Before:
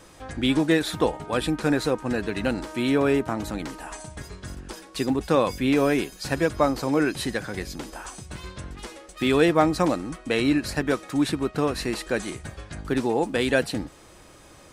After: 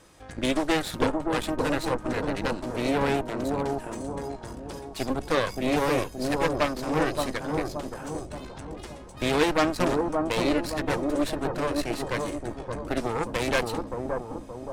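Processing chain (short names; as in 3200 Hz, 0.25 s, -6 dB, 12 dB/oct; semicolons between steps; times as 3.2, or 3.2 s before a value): added harmonics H 8 -12 dB, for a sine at -5 dBFS; analogue delay 0.573 s, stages 4096, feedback 49%, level -3 dB; gain -5.5 dB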